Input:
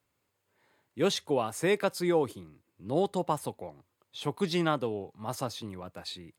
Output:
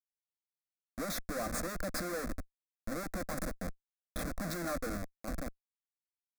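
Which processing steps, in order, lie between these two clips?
fade out at the end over 1.94 s; Schmitt trigger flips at -37.5 dBFS; static phaser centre 600 Hz, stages 8

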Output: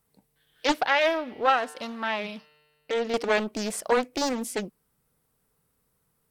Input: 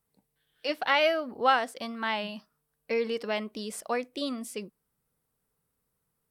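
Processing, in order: 0.86–3.14 s: feedback comb 150 Hz, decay 1.7 s, mix 50%; loudspeaker Doppler distortion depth 0.64 ms; trim +7 dB

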